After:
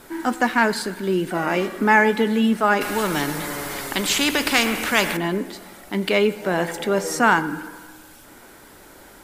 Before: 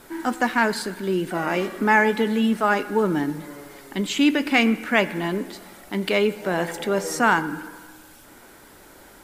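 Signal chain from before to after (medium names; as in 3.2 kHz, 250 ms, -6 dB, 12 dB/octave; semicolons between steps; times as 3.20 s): 2.81–5.17 s: spectrum-flattening compressor 2:1; trim +2 dB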